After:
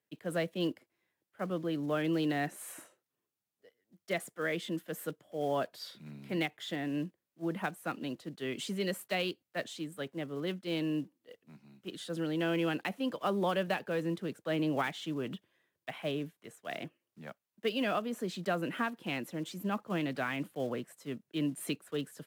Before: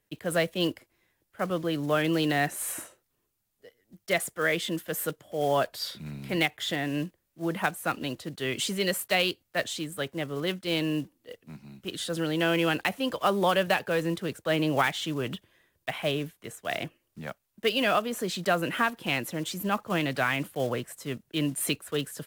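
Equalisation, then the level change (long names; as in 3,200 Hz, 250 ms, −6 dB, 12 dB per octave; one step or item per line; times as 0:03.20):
high-pass filter 150 Hz 12 dB per octave
high-shelf EQ 5,700 Hz −5 dB
dynamic equaliser 220 Hz, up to +7 dB, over −42 dBFS, Q 0.72
−9.0 dB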